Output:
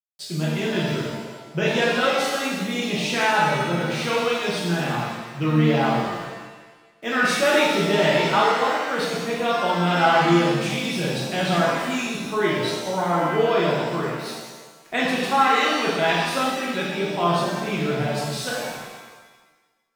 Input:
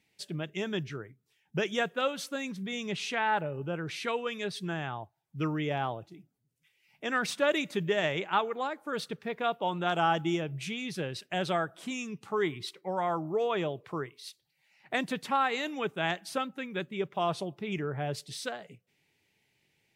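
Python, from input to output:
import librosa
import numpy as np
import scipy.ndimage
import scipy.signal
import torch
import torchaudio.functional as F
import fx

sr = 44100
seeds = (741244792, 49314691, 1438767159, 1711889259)

y = np.where(np.abs(x) >= 10.0 ** (-50.5 / 20.0), x, 0.0)
y = fx.rev_shimmer(y, sr, seeds[0], rt60_s=1.3, semitones=7, shimmer_db=-8, drr_db=-6.5)
y = y * librosa.db_to_amplitude(2.5)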